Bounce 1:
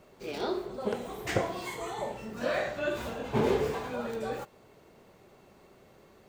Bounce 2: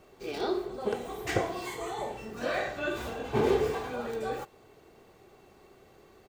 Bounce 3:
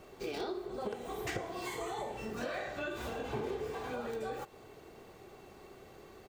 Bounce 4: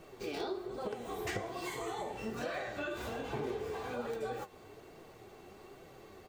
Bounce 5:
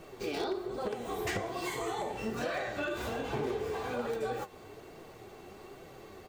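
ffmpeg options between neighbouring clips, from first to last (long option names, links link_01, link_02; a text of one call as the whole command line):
ffmpeg -i in.wav -af "aecho=1:1:2.6:0.34" out.wav
ffmpeg -i in.wav -af "acompressor=threshold=-39dB:ratio=6,volume=3dB" out.wav
ffmpeg -i in.wav -af "flanger=delay=5.7:depth=6.3:regen=49:speed=1.2:shape=triangular,volume=4dB" out.wav
ffmpeg -i in.wav -af "aeval=exprs='0.0316*(abs(mod(val(0)/0.0316+3,4)-2)-1)':channel_layout=same,volume=4dB" out.wav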